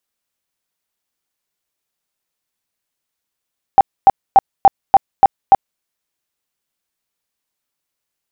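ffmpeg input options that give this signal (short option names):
-f lavfi -i "aevalsrc='0.794*sin(2*PI*784*mod(t,0.29))*lt(mod(t,0.29),22/784)':d=2.03:s=44100"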